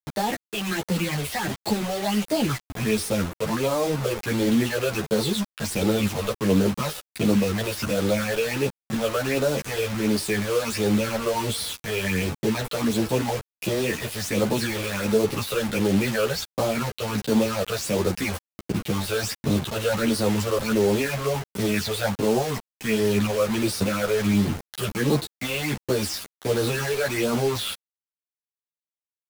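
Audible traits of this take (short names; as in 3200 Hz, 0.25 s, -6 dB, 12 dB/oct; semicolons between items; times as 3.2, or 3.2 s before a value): phasing stages 8, 1.4 Hz, lowest notch 240–2400 Hz; a quantiser's noise floor 6-bit, dither none; a shimmering, thickened sound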